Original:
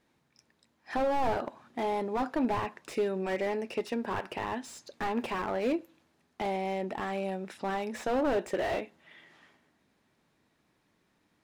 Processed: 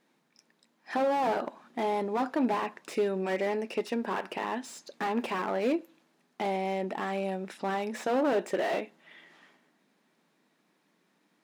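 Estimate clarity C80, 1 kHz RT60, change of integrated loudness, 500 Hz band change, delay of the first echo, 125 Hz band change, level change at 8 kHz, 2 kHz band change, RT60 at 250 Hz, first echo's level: no reverb audible, no reverb audible, +1.5 dB, +1.5 dB, no echo audible, −0.5 dB, +1.5 dB, +1.5 dB, no reverb audible, no echo audible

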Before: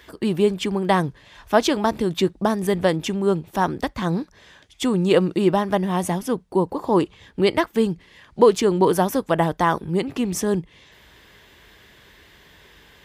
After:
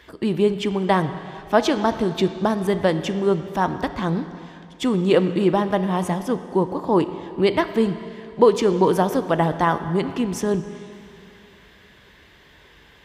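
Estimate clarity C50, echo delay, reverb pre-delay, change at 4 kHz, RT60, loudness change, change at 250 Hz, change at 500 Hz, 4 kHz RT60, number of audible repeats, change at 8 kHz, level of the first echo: 11.0 dB, no echo audible, 6 ms, −1.5 dB, 2.5 s, 0.0 dB, +0.5 dB, 0.0 dB, 2.3 s, no echo audible, −5.0 dB, no echo audible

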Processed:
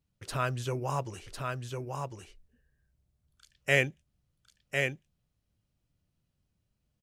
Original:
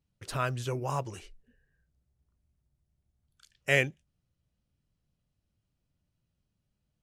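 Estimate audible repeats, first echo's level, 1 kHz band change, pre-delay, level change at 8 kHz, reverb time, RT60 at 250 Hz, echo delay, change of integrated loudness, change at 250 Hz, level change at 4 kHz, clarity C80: 1, −4.5 dB, +1.5 dB, no reverb audible, +1.5 dB, no reverb audible, no reverb audible, 1,052 ms, −1.5 dB, +1.5 dB, +1.5 dB, no reverb audible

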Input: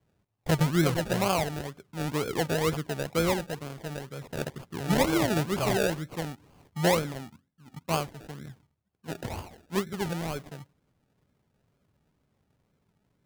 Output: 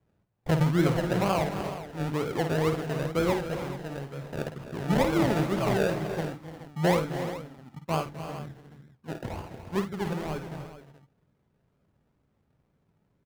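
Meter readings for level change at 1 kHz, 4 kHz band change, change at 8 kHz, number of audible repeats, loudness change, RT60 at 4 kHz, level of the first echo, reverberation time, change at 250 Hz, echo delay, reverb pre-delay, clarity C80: +0.5 dB, −4.0 dB, −7.0 dB, 5, +0.5 dB, no reverb audible, −9.5 dB, no reverb audible, +1.5 dB, 51 ms, no reverb audible, no reverb audible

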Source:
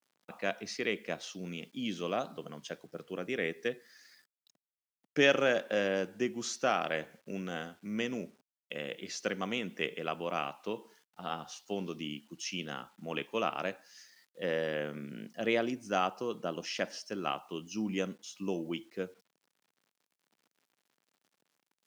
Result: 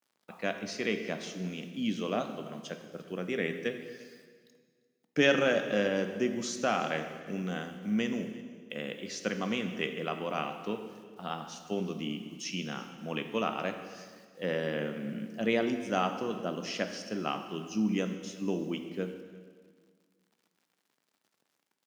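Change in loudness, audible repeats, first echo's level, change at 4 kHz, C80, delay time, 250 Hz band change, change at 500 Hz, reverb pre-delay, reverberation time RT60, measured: +2.0 dB, 1, −21.5 dB, +1.0 dB, 9.5 dB, 345 ms, +5.0 dB, +1.5 dB, 11 ms, 1.7 s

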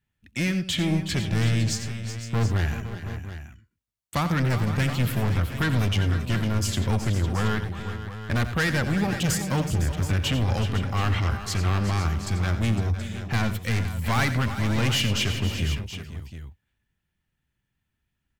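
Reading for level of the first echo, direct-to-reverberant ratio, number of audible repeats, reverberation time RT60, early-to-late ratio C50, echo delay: −12.0 dB, no reverb audible, 4, no reverb audible, no reverb audible, 88 ms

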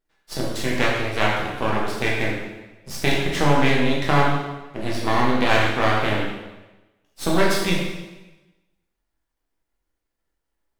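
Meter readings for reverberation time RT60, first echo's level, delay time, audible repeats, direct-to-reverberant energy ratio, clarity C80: 1.1 s, no echo audible, no echo audible, no echo audible, −4.0 dB, 3.0 dB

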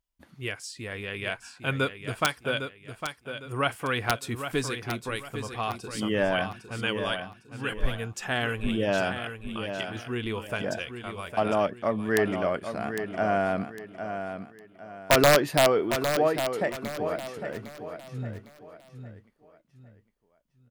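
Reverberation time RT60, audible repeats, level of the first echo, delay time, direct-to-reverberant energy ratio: no reverb audible, 3, −8.5 dB, 806 ms, no reverb audible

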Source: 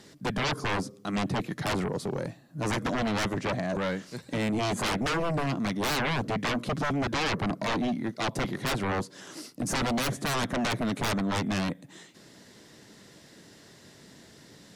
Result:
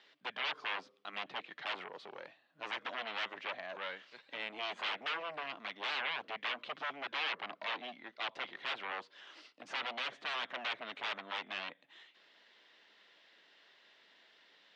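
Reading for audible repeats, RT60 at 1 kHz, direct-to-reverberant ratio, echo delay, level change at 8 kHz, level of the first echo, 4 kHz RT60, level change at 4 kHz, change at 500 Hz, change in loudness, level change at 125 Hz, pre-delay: no echo audible, no reverb audible, no reverb audible, no echo audible, −25.5 dB, no echo audible, no reverb audible, −5.0 dB, −15.5 dB, −10.0 dB, below −35 dB, no reverb audible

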